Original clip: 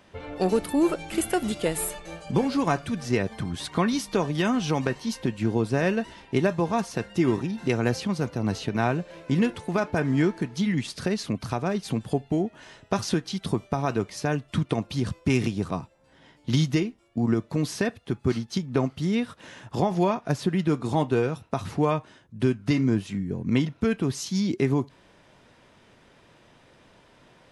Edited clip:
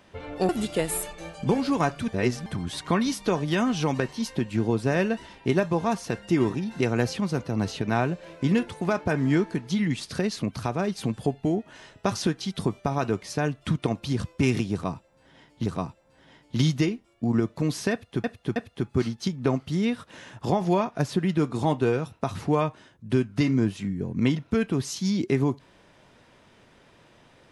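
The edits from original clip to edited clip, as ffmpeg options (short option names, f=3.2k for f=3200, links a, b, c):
-filter_complex "[0:a]asplit=7[a][b][c][d][e][f][g];[a]atrim=end=0.492[h];[b]atrim=start=1.358:end=2.952[i];[c]atrim=start=2.948:end=3.332,asetpts=PTS-STARTPTS,areverse[j];[d]atrim=start=3.328:end=16.532[k];[e]atrim=start=15.598:end=18.182[l];[f]atrim=start=17.858:end=18.182[m];[g]atrim=start=17.858[n];[h][i]acrossfade=d=0.004:c1=hsin:c2=hsin[o];[o][j]acrossfade=d=0.004:c1=hsin:c2=hsin[p];[p][k]acrossfade=d=0.004:c1=hsin:c2=hsin[q];[q][l]acrossfade=d=0.004:c1=hsin:c2=hsin[r];[r][m]acrossfade=d=0.004:c1=hsin:c2=hsin[s];[s][n]acrossfade=d=0.004:c1=hsin:c2=hsin"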